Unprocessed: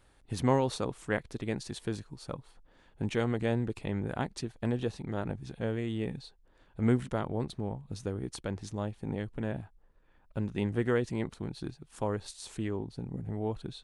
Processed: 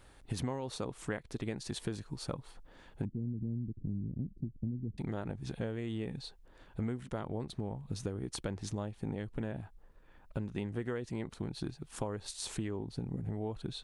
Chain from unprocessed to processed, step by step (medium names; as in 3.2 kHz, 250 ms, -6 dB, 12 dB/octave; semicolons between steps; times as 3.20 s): 3.05–4.98 s: inverse Chebyshev low-pass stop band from 900 Hz, stop band 60 dB; compression 10:1, threshold -38 dBFS, peak gain reduction 18.5 dB; trim +5 dB